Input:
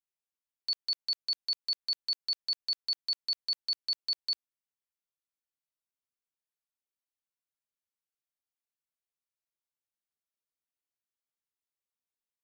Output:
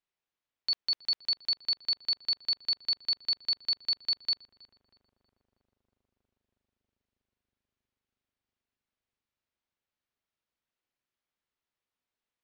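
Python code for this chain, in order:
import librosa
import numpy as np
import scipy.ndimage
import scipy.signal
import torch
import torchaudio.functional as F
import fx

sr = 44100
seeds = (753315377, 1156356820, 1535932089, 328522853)

y = scipy.signal.sosfilt(scipy.signal.butter(2, 3800.0, 'lowpass', fs=sr, output='sos'), x)
y = fx.echo_filtered(y, sr, ms=320, feedback_pct=83, hz=1400.0, wet_db=-16)
y = y * librosa.db_to_amplitude(7.0)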